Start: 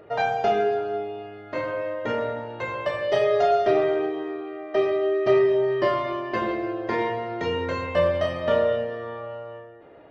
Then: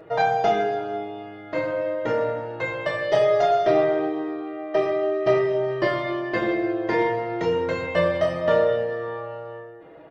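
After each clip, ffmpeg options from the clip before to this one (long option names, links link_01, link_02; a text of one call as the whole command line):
ffmpeg -i in.wav -af "aecho=1:1:6.2:0.57,volume=1.5dB" out.wav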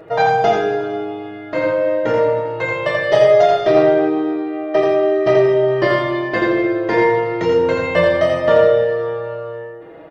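ffmpeg -i in.wav -af "aecho=1:1:84:0.596,volume=5.5dB" out.wav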